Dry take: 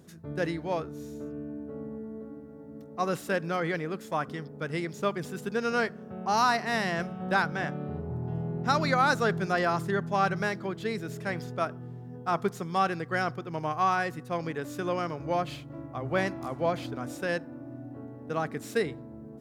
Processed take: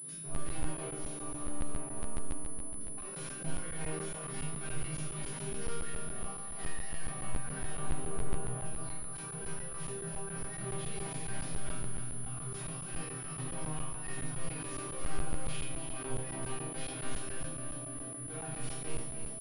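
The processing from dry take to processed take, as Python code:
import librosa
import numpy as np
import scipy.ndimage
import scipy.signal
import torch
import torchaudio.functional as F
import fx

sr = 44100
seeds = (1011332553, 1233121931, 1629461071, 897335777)

y = scipy.signal.sosfilt(scipy.signal.butter(4, 110.0, 'highpass', fs=sr, output='sos'), x)
y = fx.high_shelf(y, sr, hz=2700.0, db=11.5)
y = fx.over_compress(y, sr, threshold_db=-33.0, ratio=-0.5)
y = 10.0 ** (-31.0 / 20.0) * (np.abs((y / 10.0 ** (-31.0 / 20.0) + 3.0) % 4.0 - 2.0) - 1.0)
y = fx.resonator_bank(y, sr, root=48, chord='minor', decay_s=0.64)
y = fx.echo_feedback(y, sr, ms=293, feedback_pct=60, wet_db=-8.5)
y = fx.room_shoebox(y, sr, seeds[0], volume_m3=850.0, walls='furnished', distance_m=3.4)
y = fx.buffer_crackle(y, sr, first_s=0.35, period_s=0.14, block=512, kind='zero')
y = fx.pwm(y, sr, carrier_hz=10000.0)
y = y * librosa.db_to_amplitude(7.5)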